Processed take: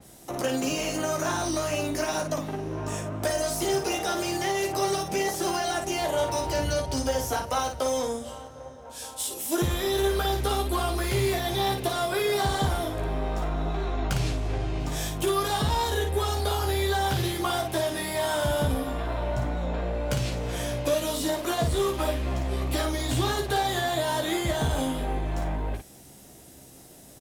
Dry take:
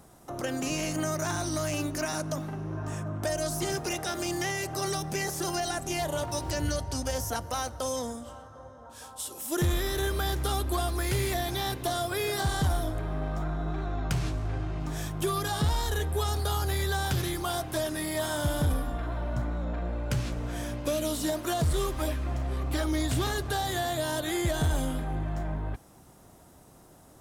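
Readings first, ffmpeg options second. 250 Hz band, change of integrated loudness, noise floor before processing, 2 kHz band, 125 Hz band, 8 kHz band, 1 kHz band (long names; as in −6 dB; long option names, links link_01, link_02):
+2.0 dB, +3.0 dB, −54 dBFS, +2.5 dB, +0.5 dB, +2.0 dB, +5.0 dB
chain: -filter_complex "[0:a]acrossover=split=350|1600[link_01][link_02][link_03];[link_02]adynamicsmooth=sensitivity=4:basefreq=610[link_04];[link_03]asoftclip=type=tanh:threshold=-32dB[link_05];[link_01][link_04][link_05]amix=inputs=3:normalize=0,lowshelf=frequency=260:gain=-9,acompressor=threshold=-34dB:ratio=2,asplit=2[link_06][link_07];[link_07]aecho=0:1:15|56:0.596|0.531[link_08];[link_06][link_08]amix=inputs=2:normalize=0,adynamicequalizer=threshold=0.00251:dfrequency=4600:dqfactor=0.7:tfrequency=4600:tqfactor=0.7:attack=5:release=100:ratio=0.375:range=3:mode=cutabove:tftype=highshelf,volume=8dB"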